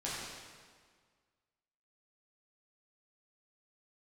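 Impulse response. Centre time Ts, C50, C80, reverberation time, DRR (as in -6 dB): 0.111 s, -2.0 dB, 0.0 dB, 1.7 s, -8.5 dB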